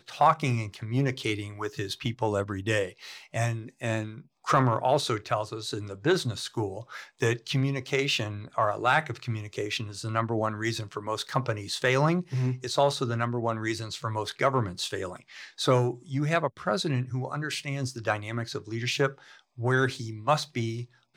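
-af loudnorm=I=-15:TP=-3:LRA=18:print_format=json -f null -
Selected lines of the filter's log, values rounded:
"input_i" : "-28.8",
"input_tp" : "-10.1",
"input_lra" : "2.2",
"input_thresh" : "-39.0",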